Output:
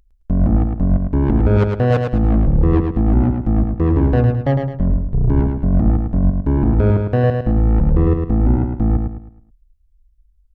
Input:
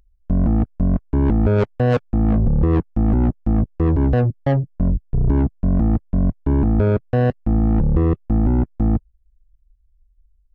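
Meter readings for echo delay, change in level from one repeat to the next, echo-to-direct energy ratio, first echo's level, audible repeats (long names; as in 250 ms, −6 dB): 107 ms, −8.5 dB, −4.5 dB, −5.0 dB, 4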